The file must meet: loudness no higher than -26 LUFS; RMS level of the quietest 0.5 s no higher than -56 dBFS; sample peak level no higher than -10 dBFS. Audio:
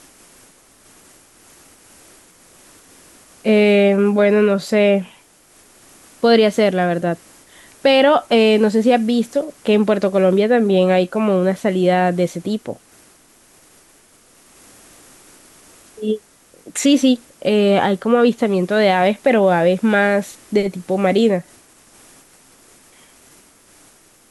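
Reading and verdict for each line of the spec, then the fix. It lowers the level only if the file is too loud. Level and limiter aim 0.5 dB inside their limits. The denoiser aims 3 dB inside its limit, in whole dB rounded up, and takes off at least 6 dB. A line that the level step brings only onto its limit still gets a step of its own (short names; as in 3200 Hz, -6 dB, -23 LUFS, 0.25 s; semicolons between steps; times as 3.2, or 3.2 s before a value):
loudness -16.0 LUFS: fail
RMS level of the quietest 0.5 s -51 dBFS: fail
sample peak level -4.5 dBFS: fail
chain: gain -10.5 dB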